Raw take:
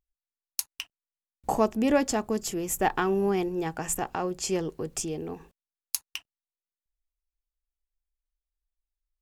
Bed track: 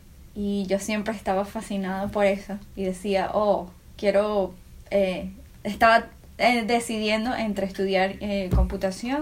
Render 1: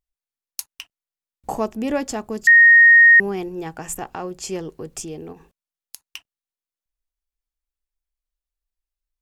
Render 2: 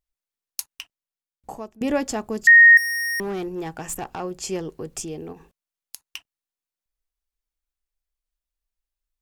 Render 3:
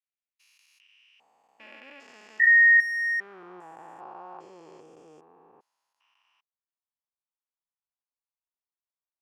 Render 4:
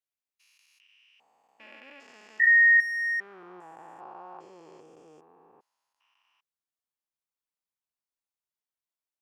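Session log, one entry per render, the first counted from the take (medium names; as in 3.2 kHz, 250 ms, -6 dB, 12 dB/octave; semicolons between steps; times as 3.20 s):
2.47–3.20 s: bleep 1.86 kHz -6.5 dBFS; 5.32–6.02 s: compression, threshold -37 dBFS
0.72–1.81 s: fade out, to -21 dB; 2.77–4.20 s: overload inside the chain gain 25 dB
spectrogram pixelated in time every 400 ms; band-pass sweep 2.4 kHz -> 960 Hz, 2.90–3.67 s
trim -1.5 dB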